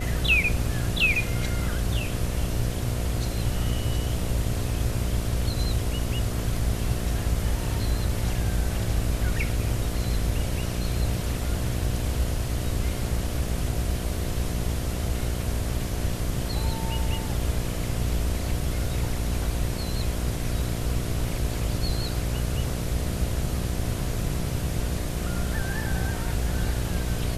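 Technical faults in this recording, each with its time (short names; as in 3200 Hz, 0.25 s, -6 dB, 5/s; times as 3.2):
buzz 60 Hz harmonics 12 -31 dBFS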